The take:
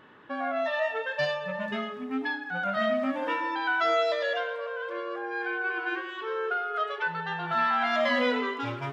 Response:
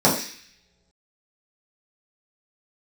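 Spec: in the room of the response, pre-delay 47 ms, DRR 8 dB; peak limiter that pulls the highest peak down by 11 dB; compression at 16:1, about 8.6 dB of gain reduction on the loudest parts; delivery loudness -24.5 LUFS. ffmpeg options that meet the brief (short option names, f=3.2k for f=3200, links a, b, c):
-filter_complex "[0:a]acompressor=threshold=-30dB:ratio=16,alimiter=level_in=8dB:limit=-24dB:level=0:latency=1,volume=-8dB,asplit=2[a][b];[1:a]atrim=start_sample=2205,adelay=47[c];[b][c]afir=irnorm=-1:irlink=0,volume=-28.5dB[d];[a][d]amix=inputs=2:normalize=0,volume=13.5dB"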